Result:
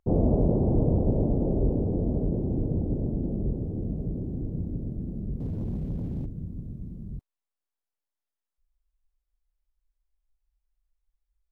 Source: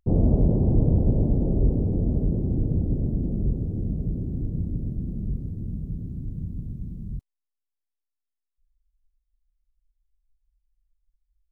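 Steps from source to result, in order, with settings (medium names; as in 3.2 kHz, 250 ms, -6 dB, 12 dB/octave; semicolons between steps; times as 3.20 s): peaking EQ 720 Hz +9.5 dB 3 oct; 5.40–6.26 s: waveshaping leveller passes 2; trim -5.5 dB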